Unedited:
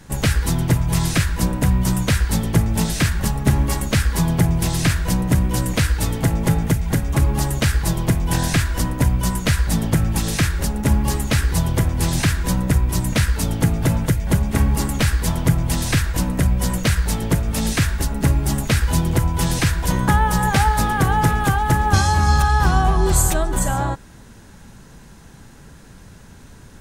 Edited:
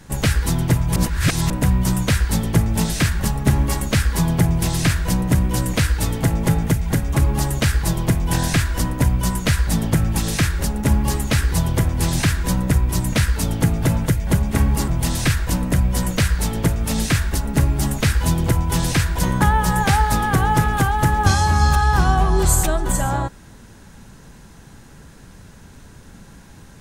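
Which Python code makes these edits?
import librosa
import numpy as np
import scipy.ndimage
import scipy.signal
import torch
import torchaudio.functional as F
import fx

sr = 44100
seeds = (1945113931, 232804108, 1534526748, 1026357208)

y = fx.edit(x, sr, fx.reverse_span(start_s=0.96, length_s=0.54),
    fx.cut(start_s=14.88, length_s=0.67), tone=tone)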